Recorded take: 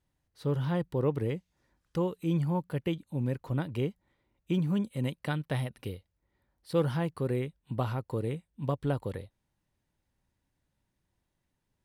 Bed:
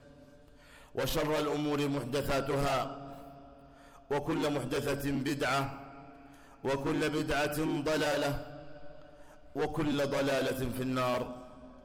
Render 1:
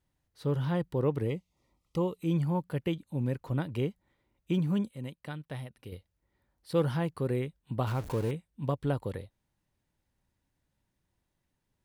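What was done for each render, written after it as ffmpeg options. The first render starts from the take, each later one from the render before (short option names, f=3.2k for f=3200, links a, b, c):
-filter_complex "[0:a]asettb=1/sr,asplit=3[a][b][c];[a]atrim=end=1.294[d];[b]atrim=start=1.29:end=2.21,asetpts=PTS-STARTPTS,afade=t=in:d=0.004:c=qsin,afade=t=out:st=0.916:d=0.004:c=qsin,asuperstop=centerf=1600:order=8:qfactor=2.8[e];[c]atrim=start=2.206[f];[d][e]acrossfade=d=0.004:c1=hsin:c2=qsin[g];[g][f]acrossfade=d=0.004:c1=qsin:c2=hsin,asettb=1/sr,asplit=3[h][i][j];[h]atrim=end=7.874[k];[i]atrim=start=7.87:end=8.31,asetpts=PTS-STARTPTS,afade=t=in:d=0.004:c=qsin,afade=t=out:st=0.436:d=0.004:c=qsin,aeval=exprs='val(0)+0.5*0.0141*sgn(val(0))':c=same[l];[j]atrim=start=8.306[m];[k][l]acrossfade=d=0.004:c1=hsin:c2=qsin[n];[n][m]acrossfade=d=0.004:c1=qsin:c2=hsin,asplit=3[o][p][q];[o]atrim=end=4.912[r];[p]atrim=start=4.908:end=5.922,asetpts=PTS-STARTPTS,volume=-8dB[s];[q]atrim=start=5.918[t];[r][s]acrossfade=d=0.004:c1=hsin:c2=hsin[u];[u][t]acrossfade=d=0.004:c1=hsin:c2=hsin"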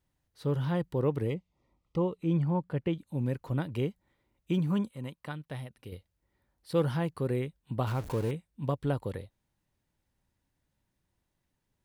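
-filter_complex "[0:a]asettb=1/sr,asplit=3[a][b][c];[a]atrim=end=1.344[d];[b]atrim=start=1.34:end=2.95,asetpts=PTS-STARTPTS,afade=t=in:d=0.004:c=qsin,afade=t=out:st=1.606:d=0.004:c=qsin,aemphasis=mode=reproduction:type=75fm[e];[c]atrim=start=2.946[f];[d][e]acrossfade=d=0.004:c1=hsin:c2=qsin[g];[g][f]acrossfade=d=0.004:c1=qsin:c2=hsin,asettb=1/sr,asplit=3[h][i][j];[h]atrim=end=4.704[k];[i]atrim=start=4.7:end=5.32,asetpts=PTS-STARTPTS,afade=t=in:d=0.004:c=qsin,afade=t=out:st=0.616:d=0.004:c=qsin,equalizer=f=1.1k:t=o:w=0.77:g=7[l];[j]atrim=start=5.316[m];[k][l]acrossfade=d=0.004:c1=hsin:c2=qsin[n];[n][m]acrossfade=d=0.004:c1=qsin:c2=hsin"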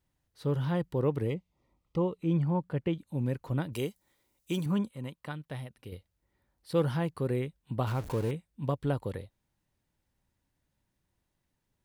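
-filter_complex "[0:a]asettb=1/sr,asplit=3[a][b][c];[a]atrim=end=3.734[d];[b]atrim=start=3.73:end=4.66,asetpts=PTS-STARTPTS,afade=t=in:d=0.004:c=qsin,afade=t=out:st=0.926:d=0.004:c=qsin,bass=f=250:g=-6,treble=f=4k:g=14[e];[c]atrim=start=4.656[f];[d][e]acrossfade=d=0.004:c1=hsin:c2=qsin[g];[g][f]acrossfade=d=0.004:c1=qsin:c2=hsin"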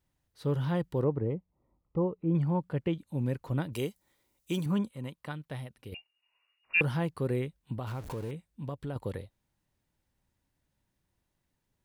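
-filter_complex "[0:a]asettb=1/sr,asplit=3[a][b][c];[a]atrim=end=1.044[d];[b]atrim=start=1.04:end=2.35,asetpts=PTS-STARTPTS,afade=t=in:d=0.004:c=qsin,afade=t=out:st=1.306:d=0.004:c=qsin,lowpass=1.1k[e];[c]atrim=start=2.346[f];[d][e]acrossfade=d=0.004:c1=hsin:c2=qsin[g];[g][f]acrossfade=d=0.004:c1=qsin:c2=hsin,asettb=1/sr,asplit=3[h][i][j];[h]atrim=end=5.944[k];[i]atrim=start=5.94:end=6.81,asetpts=PTS-STARTPTS,afade=t=in:d=0.004:c=qsin,afade=t=out:st=0.866:d=0.004:c=qsin,lowpass=f=2.5k:t=q:w=0.5098,lowpass=f=2.5k:t=q:w=0.6013,lowpass=f=2.5k:t=q:w=0.9,lowpass=f=2.5k:t=q:w=2.563,afreqshift=-2900[l];[j]atrim=start=6.806[m];[k][l]acrossfade=d=0.004:c1=hsin:c2=qsin[n];[n][m]acrossfade=d=0.004:c1=qsin:c2=hsin,asettb=1/sr,asplit=3[o][p][q];[o]atrim=end=7.774[r];[p]atrim=start=7.77:end=8.96,asetpts=PTS-STARTPTS,afade=t=in:d=0.004:c=qsin,afade=t=out:st=1.186:d=0.004:c=qsin,acompressor=threshold=-36dB:ratio=2.5:attack=3.2:release=140:knee=1:detection=peak[s];[q]atrim=start=8.956[t];[r][s]acrossfade=d=0.004:c1=hsin:c2=qsin[u];[u][t]acrossfade=d=0.004:c1=qsin:c2=hsin"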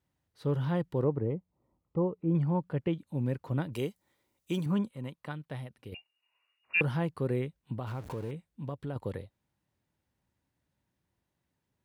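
-af "highpass=69,highshelf=f=4k:g=-6"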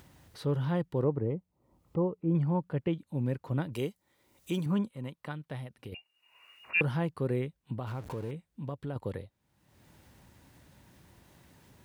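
-af "acompressor=mode=upward:threshold=-39dB:ratio=2.5"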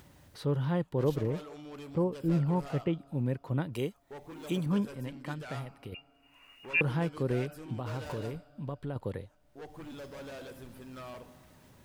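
-filter_complex "[1:a]volume=-14dB[a];[0:a][a]amix=inputs=2:normalize=0"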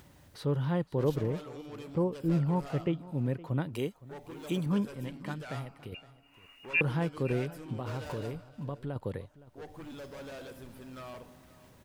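-af "aecho=1:1:515:0.112"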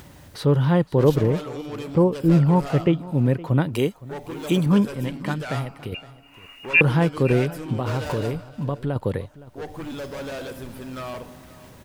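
-af "volume=11.5dB"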